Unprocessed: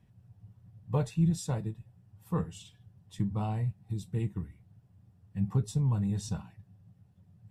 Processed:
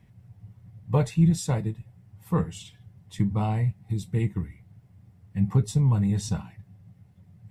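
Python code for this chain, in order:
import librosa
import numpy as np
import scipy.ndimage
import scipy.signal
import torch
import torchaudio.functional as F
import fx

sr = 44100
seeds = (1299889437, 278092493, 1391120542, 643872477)

y = fx.peak_eq(x, sr, hz=2100.0, db=10.0, octaves=0.2)
y = y * 10.0 ** (6.5 / 20.0)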